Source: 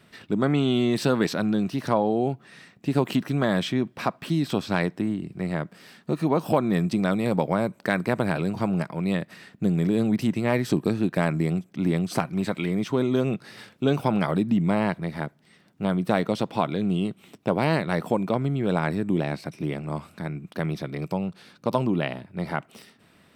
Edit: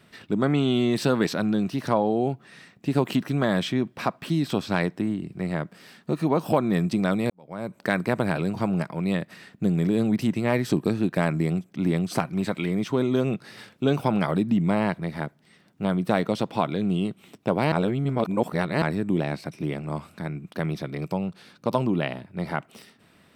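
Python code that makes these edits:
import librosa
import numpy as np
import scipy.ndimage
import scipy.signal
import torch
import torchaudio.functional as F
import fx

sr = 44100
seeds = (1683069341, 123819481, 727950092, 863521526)

y = fx.edit(x, sr, fx.fade_in_span(start_s=7.3, length_s=0.5, curve='qua'),
    fx.reverse_span(start_s=17.72, length_s=1.1), tone=tone)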